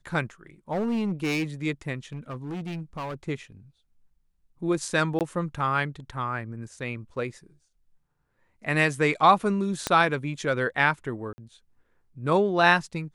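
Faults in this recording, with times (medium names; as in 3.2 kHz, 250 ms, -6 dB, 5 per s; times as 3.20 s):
0.72–1.44 s: clipped -23 dBFS
2.13–3.15 s: clipped -30 dBFS
5.19–5.21 s: dropout 18 ms
9.87 s: pop -10 dBFS
11.33–11.38 s: dropout 50 ms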